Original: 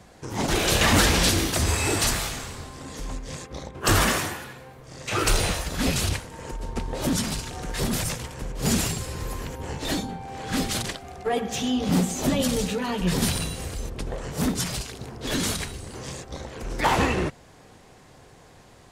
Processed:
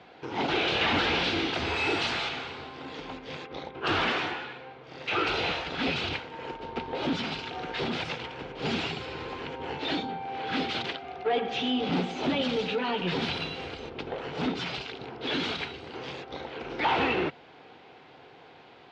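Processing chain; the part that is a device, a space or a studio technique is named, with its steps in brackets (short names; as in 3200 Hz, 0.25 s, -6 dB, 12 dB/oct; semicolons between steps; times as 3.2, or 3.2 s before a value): overdrive pedal into a guitar cabinet (overdrive pedal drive 19 dB, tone 3100 Hz, clips at -7.5 dBFS; speaker cabinet 95–3700 Hz, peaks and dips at 110 Hz -5 dB, 200 Hz -6 dB, 590 Hz -7 dB, 1100 Hz -8 dB, 1800 Hz -8 dB); 1.76–2.29 high shelf 8500 Hz +12 dB; gain -5.5 dB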